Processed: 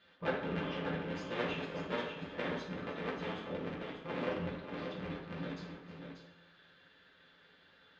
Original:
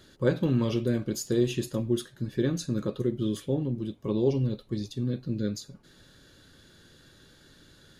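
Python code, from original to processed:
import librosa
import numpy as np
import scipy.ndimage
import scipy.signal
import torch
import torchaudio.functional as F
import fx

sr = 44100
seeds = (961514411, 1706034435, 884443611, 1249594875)

y = fx.cycle_switch(x, sr, every=3, mode='inverted')
y = scipy.signal.sosfilt(scipy.signal.butter(4, 2900.0, 'lowpass', fs=sr, output='sos'), y)
y = fx.tilt_eq(y, sr, slope=4.0)
y = fx.comb_fb(y, sr, f0_hz=170.0, decay_s=1.7, harmonics='all', damping=0.0, mix_pct=70)
y = fx.echo_multitap(y, sr, ms=(314, 587), db=(-16.5, -7.0))
y = fx.rev_fdn(y, sr, rt60_s=0.89, lf_ratio=0.75, hf_ratio=0.55, size_ms=34.0, drr_db=-4.5)
y = F.gain(torch.from_numpy(y), -1.5).numpy()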